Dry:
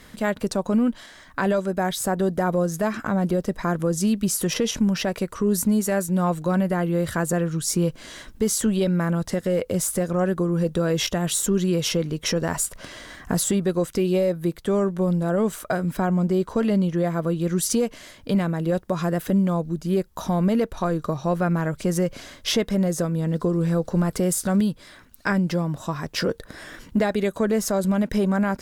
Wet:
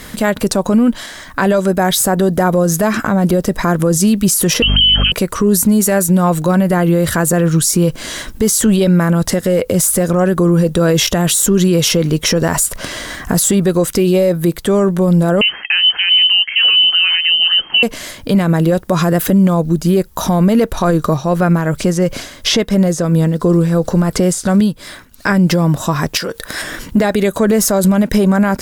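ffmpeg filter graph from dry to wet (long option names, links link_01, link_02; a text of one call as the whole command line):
ffmpeg -i in.wav -filter_complex "[0:a]asettb=1/sr,asplit=3[link_01][link_02][link_03];[link_01]atrim=end=4.624[link_04];[link_02]atrim=start=4.62:end=5.12,asetpts=PTS-STARTPTS,afade=type=in:duration=0.004:curve=qsin,afade=type=out:start_time=0.496:duration=0.004:curve=qsin,aemphasis=mode=reproduction:type=riaa,lowpass=frequency=2700:width_type=q:width=0.5098,lowpass=frequency=2700:width_type=q:width=0.6013,lowpass=frequency=2700:width_type=q:width=0.9,lowpass=frequency=2700:width_type=q:width=2.563,afreqshift=-3200,aeval=exprs='val(0)+0.0631*(sin(2*PI*50*n/s)+sin(2*PI*2*50*n/s)/2+sin(2*PI*3*50*n/s)/3+sin(2*PI*4*50*n/s)/4+sin(2*PI*5*50*n/s)/5)':channel_layout=same[link_05];[link_03]atrim=start=5.116[link_06];[link_04][link_05]acrossfade=duration=0.004:curve1=hsin:curve2=qsin[link_07];[link_07][link_06]acrossfade=duration=0.004:curve1=qsin:curve2=hsin,asettb=1/sr,asplit=3[link_08][link_09][link_10];[link_08]atrim=end=15.414[link_11];[link_09]atrim=start=15.41:end=17.83,asetpts=PTS-STARTPTS,afade=type=in:duration=0.004:curve=qsin,afade=type=out:start_time=2.416:duration=0.004:curve=qsin,acrusher=bits=9:mode=log:mix=0:aa=0.000001,lowpass=frequency=2700:width_type=q:width=0.5098,lowpass=frequency=2700:width_type=q:width=0.6013,lowpass=frequency=2700:width_type=q:width=0.9,lowpass=frequency=2700:width_type=q:width=2.563,afreqshift=-3200[link_12];[link_10]atrim=start=17.826[link_13];[link_11][link_12]acrossfade=duration=0.004:curve1=hsin:curve2=qsin[link_14];[link_14][link_13]acrossfade=duration=0.004:curve1=qsin:curve2=hsin,asettb=1/sr,asplit=3[link_15][link_16][link_17];[link_15]atrim=end=21.114[link_18];[link_16]atrim=start=21.11:end=25.27,asetpts=PTS-STARTPTS,afade=type=in:duration=0.004:curve=qsin,afade=type=out:start_time=4.156:duration=0.004:curve=qsin,acrossover=split=7700[link_19][link_20];[link_20]acompressor=threshold=-51dB:ratio=4:attack=1:release=60[link_21];[link_19][link_21]amix=inputs=2:normalize=0,tremolo=f=2.9:d=0.55[link_22];[link_17]atrim=start=25.266[link_23];[link_18][link_22]acrossfade=duration=0.004:curve1=hsin:curve2=qsin[link_24];[link_24][link_23]acrossfade=duration=0.004:curve1=qsin:curve2=hsin,asettb=1/sr,asplit=3[link_25][link_26][link_27];[link_25]atrim=end=26.174[link_28];[link_26]atrim=start=26.17:end=26.62,asetpts=PTS-STARTPTS,afade=type=in:duration=0.004:curve=qsin,afade=type=out:start_time=0.446:duration=0.004:curve=qsin,tiltshelf=frequency=660:gain=-6,acompressor=threshold=-31dB:ratio=10:attack=3.2:release=140:knee=1:detection=peak[link_29];[link_27]atrim=start=26.616[link_30];[link_28][link_29]acrossfade=duration=0.004:curve1=hsin:curve2=qsin[link_31];[link_31][link_30]acrossfade=duration=0.004:curve1=qsin:curve2=hsin,highshelf=frequency=8300:gain=7.5,alimiter=level_in=17.5dB:limit=-1dB:release=50:level=0:latency=1,volume=-3.5dB" out.wav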